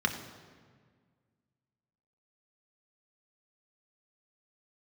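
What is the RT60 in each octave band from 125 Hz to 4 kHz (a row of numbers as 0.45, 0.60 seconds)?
2.3, 2.2, 1.8, 1.6, 1.5, 1.2 seconds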